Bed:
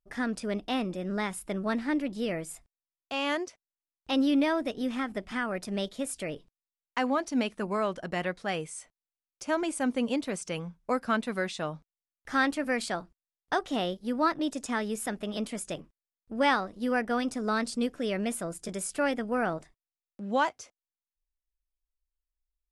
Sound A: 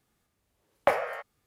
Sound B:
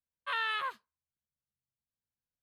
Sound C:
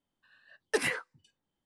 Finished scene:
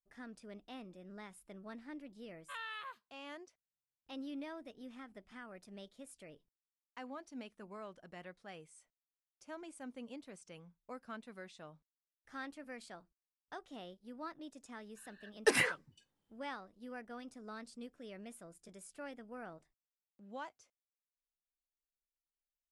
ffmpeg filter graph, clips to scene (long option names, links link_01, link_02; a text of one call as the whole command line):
ffmpeg -i bed.wav -i cue0.wav -i cue1.wav -i cue2.wav -filter_complex "[0:a]volume=-19.5dB[link_01];[2:a]atrim=end=2.42,asetpts=PTS-STARTPTS,volume=-12dB,afade=type=in:duration=0.004:curve=hsin,afade=type=out:start_time=2.416:duration=0.004:curve=hsin,adelay=2220[link_02];[3:a]atrim=end=1.65,asetpts=PTS-STARTPTS,afade=type=in:duration=0.004:curve=hsin,afade=type=out:start_time=1.646:duration=0.004:curve=hsin,adelay=14730[link_03];[link_01][link_02][link_03]amix=inputs=3:normalize=0" out.wav